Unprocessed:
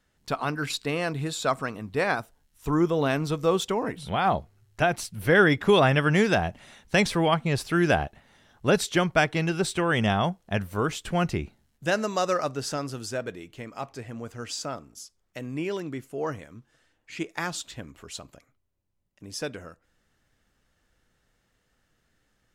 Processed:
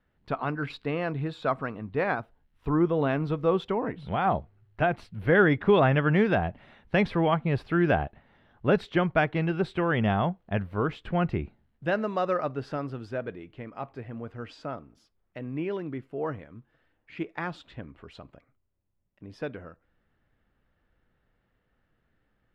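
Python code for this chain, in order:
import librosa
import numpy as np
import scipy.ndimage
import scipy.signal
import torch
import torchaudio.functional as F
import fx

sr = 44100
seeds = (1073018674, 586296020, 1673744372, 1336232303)

y = fx.air_absorb(x, sr, metres=420.0)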